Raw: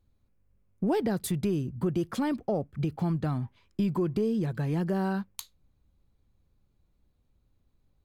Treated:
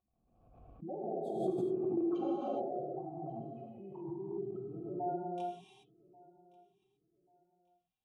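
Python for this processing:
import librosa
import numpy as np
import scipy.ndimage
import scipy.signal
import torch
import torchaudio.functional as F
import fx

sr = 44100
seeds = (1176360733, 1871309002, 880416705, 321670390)

y = fx.pitch_ramps(x, sr, semitones=-3.0, every_ms=933)
y = fx.spec_gate(y, sr, threshold_db=-15, keep='strong')
y = fx.peak_eq(y, sr, hz=360.0, db=11.0, octaves=0.42)
y = y + 0.59 * np.pad(y, (int(5.5 * sr / 1000.0), 0))[:len(y)]
y = fx.level_steps(y, sr, step_db=16)
y = fx.vowel_filter(y, sr, vowel='a')
y = fx.echo_feedback(y, sr, ms=1137, feedback_pct=28, wet_db=-24.0)
y = fx.rev_gated(y, sr, seeds[0], gate_ms=440, shape='flat', drr_db=-6.0)
y = fx.pre_swell(y, sr, db_per_s=53.0)
y = y * librosa.db_to_amplitude(6.0)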